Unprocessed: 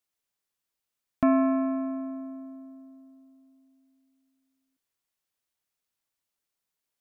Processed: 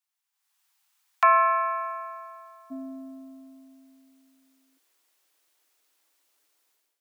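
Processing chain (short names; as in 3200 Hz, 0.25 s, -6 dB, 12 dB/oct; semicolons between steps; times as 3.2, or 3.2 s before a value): steep high-pass 740 Hz 96 dB/oct, from 2.7 s 270 Hz; AGC gain up to 16 dB; gain -1.5 dB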